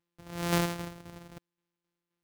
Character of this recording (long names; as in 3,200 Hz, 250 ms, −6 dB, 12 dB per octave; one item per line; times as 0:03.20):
a buzz of ramps at a fixed pitch in blocks of 256 samples
tremolo saw down 3.8 Hz, depth 55%